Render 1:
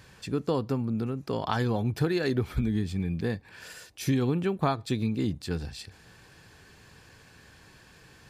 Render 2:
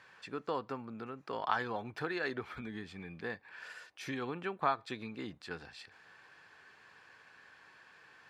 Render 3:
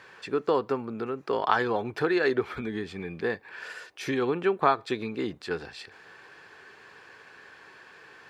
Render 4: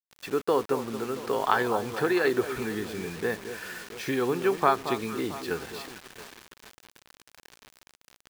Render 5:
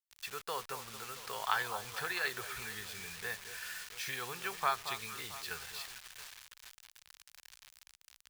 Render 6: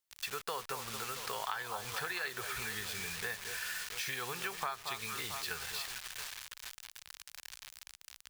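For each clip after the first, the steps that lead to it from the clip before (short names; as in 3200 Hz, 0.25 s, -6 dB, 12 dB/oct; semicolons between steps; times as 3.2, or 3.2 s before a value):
band-pass 1400 Hz, Q 1
bell 400 Hz +8 dB 0.65 oct; gain +8 dB
echo with dull and thin repeats by turns 0.225 s, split 1300 Hz, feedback 67%, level -10 dB; bit-crush 7-bit
passive tone stack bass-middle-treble 10-0-10
compressor 5:1, threshold -43 dBFS, peak gain reduction 15.5 dB; gain +7.5 dB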